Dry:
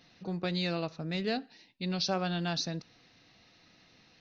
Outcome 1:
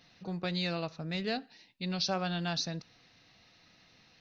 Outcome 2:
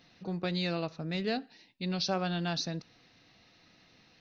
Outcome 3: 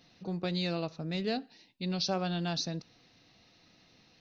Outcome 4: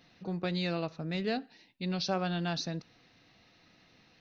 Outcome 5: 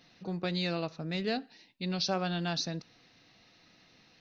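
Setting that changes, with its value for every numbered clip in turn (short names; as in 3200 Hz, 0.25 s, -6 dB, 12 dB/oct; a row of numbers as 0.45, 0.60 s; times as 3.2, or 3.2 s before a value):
bell, frequency: 320, 15000, 1700, 5400, 62 Hz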